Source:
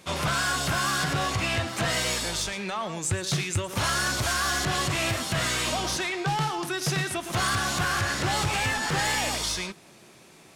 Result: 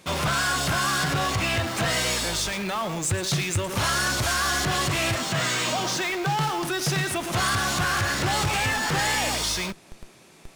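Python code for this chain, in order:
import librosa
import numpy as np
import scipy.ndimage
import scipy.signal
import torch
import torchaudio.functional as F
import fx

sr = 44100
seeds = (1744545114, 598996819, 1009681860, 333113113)

p1 = fx.cheby1_bandpass(x, sr, low_hz=120.0, high_hz=7900.0, order=3, at=(5.15, 6.37))
p2 = fx.schmitt(p1, sr, flips_db=-41.0)
y = p1 + (p2 * 10.0 ** (-8.5 / 20.0))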